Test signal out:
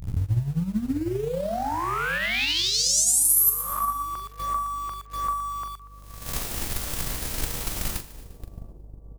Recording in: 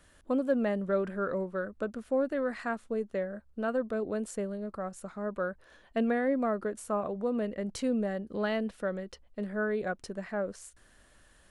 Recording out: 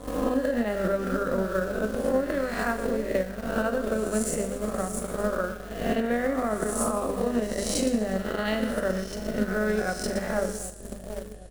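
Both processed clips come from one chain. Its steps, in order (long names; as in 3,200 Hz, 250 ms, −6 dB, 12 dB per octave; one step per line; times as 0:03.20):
peak hold with a rise ahead of every peak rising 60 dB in 0.96 s
mains-hum notches 50/100/150/200/250 Hz
echo with a time of its own for lows and highs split 690 Hz, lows 766 ms, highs 119 ms, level −9.5 dB
hum with harmonics 50 Hz, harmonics 6, −53 dBFS −8 dB per octave
in parallel at −6 dB: centre clipping without the shift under −37 dBFS
on the sum: low-shelf EQ 130 Hz +8.5 dB
brickwall limiter −18 dBFS
high-shelf EQ 5,300 Hz +10.5 dB
double-tracking delay 42 ms −9 dB
transient designer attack +10 dB, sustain −4 dB
level −2 dB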